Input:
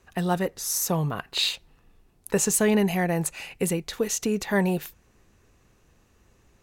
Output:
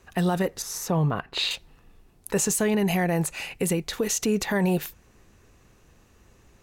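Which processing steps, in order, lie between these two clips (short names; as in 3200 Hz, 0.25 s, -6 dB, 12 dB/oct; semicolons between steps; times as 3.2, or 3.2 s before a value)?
0.62–1.51 LPF 2100 Hz 6 dB/oct; limiter -19.5 dBFS, peak gain reduction 9 dB; gain +4 dB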